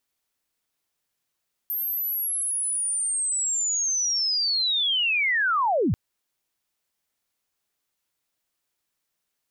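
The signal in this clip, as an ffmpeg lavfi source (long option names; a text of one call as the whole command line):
ffmpeg -f lavfi -i "aevalsrc='pow(10,(-25+6*t/4.24)/20)*sin(2*PI*(13000*t-12932*t*t/(2*4.24)))':duration=4.24:sample_rate=44100" out.wav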